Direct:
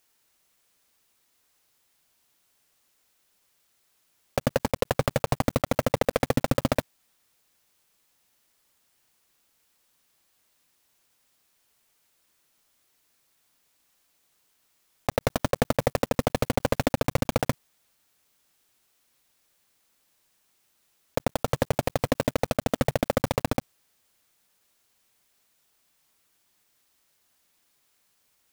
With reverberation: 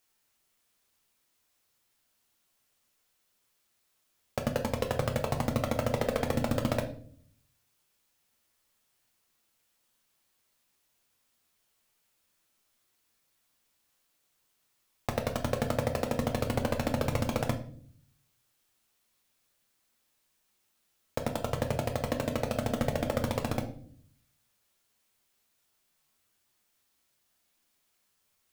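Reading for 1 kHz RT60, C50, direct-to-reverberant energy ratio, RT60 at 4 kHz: 0.45 s, 11.5 dB, 4.0 dB, 0.40 s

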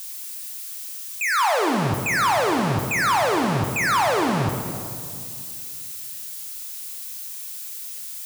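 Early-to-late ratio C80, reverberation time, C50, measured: 6.0 dB, 2.3 s, 4.5 dB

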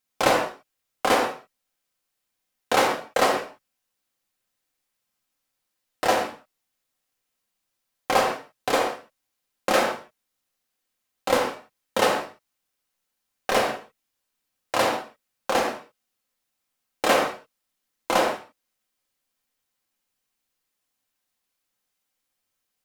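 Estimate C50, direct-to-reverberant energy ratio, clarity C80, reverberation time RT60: 5.0 dB, -1.0 dB, 8.0 dB, no single decay rate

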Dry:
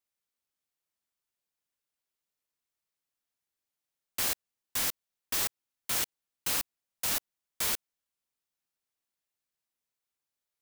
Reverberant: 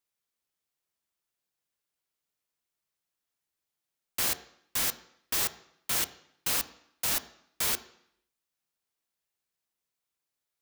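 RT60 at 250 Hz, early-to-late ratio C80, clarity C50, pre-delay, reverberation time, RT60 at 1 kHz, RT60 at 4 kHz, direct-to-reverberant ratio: 0.70 s, 18.0 dB, 15.5 dB, 3 ms, 0.70 s, 0.70 s, 0.70 s, 11.5 dB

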